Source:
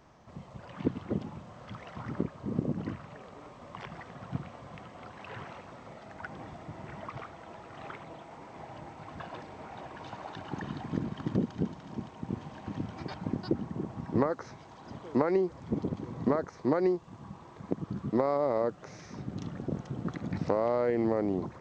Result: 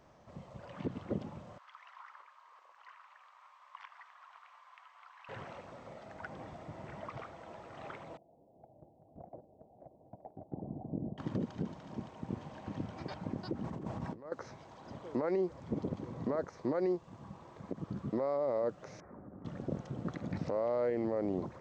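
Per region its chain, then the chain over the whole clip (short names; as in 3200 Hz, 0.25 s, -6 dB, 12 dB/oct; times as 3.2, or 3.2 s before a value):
1.58–5.29 elliptic high-pass 1000 Hz, stop band 80 dB + tilt -3 dB/oct
8.17–11.18 elliptic low-pass 730 Hz, stop band 60 dB + gate -45 dBFS, range -12 dB
13.64–14.32 short-mantissa float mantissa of 8-bit + negative-ratio compressor -40 dBFS
19–19.45 inverse Chebyshev low-pass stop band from 3000 Hz + bell 130 Hz -11.5 dB 0.58 oct + compressor 3:1, threshold -44 dBFS
whole clip: bell 560 Hz +5.5 dB 0.45 oct; limiter -20.5 dBFS; gain -4 dB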